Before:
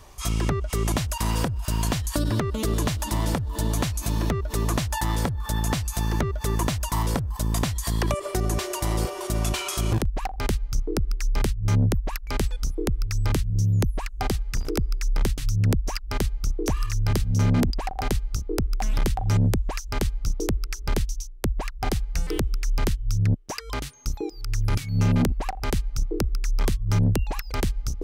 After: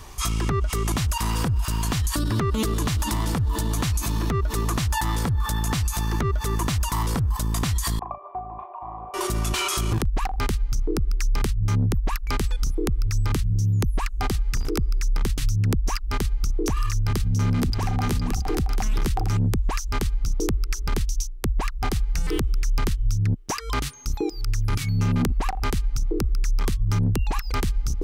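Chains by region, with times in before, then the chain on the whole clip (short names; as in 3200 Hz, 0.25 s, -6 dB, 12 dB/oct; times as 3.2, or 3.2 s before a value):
7.99–9.14 vocal tract filter a + bell 780 Hz +3 dB 0.34 oct + doubler 37 ms -6 dB
17.05–19.39 upward compressor, threshold -33 dBFS + tapped delay 0.463/0.673 s -9.5/-12.5 dB
whole clip: bell 590 Hz -7.5 dB 0.49 oct; limiter -23 dBFS; dynamic EQ 1200 Hz, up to +4 dB, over -54 dBFS, Q 5; gain +7 dB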